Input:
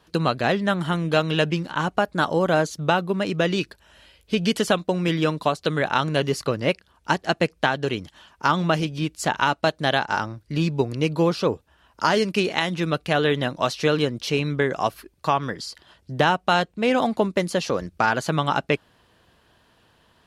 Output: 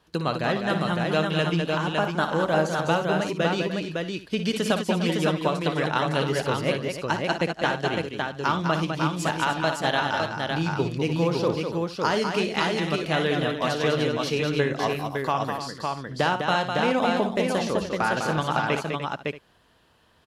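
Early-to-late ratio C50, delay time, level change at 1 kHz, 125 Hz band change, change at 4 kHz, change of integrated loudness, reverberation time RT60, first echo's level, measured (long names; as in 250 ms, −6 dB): no reverb audible, 58 ms, −2.0 dB, −1.5 dB, −1.5 dB, −2.0 dB, no reverb audible, −9.5 dB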